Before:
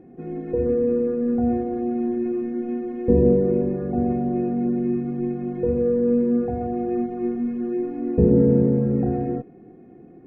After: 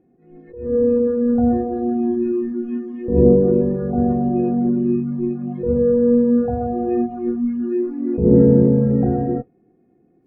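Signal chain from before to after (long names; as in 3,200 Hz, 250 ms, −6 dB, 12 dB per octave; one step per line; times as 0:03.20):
noise reduction from a noise print of the clip's start 17 dB
level that may rise only so fast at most 100 dB per second
level +5 dB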